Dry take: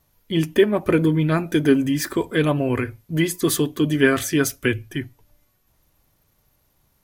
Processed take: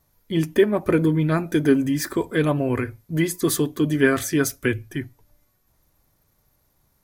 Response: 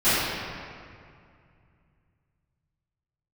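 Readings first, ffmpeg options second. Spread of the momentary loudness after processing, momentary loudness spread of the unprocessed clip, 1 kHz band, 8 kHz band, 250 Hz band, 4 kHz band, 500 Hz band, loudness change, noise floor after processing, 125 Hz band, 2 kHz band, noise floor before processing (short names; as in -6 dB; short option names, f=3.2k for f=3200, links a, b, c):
8 LU, 8 LU, -1.0 dB, -1.0 dB, -1.0 dB, -4.5 dB, -1.0 dB, -1.0 dB, -66 dBFS, -1.0 dB, -2.0 dB, -65 dBFS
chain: -af "equalizer=f=2.9k:t=o:w=0.51:g=-6,volume=-1dB"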